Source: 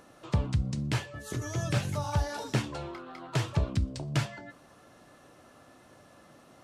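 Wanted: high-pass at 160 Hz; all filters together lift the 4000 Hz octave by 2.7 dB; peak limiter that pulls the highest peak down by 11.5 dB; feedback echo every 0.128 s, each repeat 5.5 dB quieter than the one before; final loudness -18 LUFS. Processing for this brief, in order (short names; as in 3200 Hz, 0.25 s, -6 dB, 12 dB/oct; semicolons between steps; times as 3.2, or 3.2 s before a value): HPF 160 Hz; bell 4000 Hz +3.5 dB; limiter -27 dBFS; feedback echo 0.128 s, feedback 53%, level -5.5 dB; gain +19 dB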